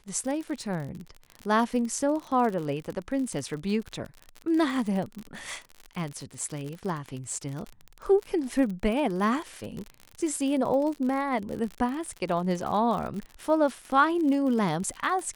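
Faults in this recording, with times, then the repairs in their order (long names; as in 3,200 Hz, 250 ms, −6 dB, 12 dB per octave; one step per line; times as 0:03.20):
surface crackle 50 per second −32 dBFS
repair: click removal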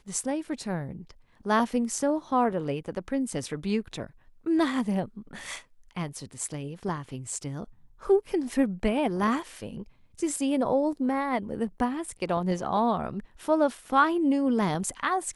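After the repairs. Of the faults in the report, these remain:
none of them is left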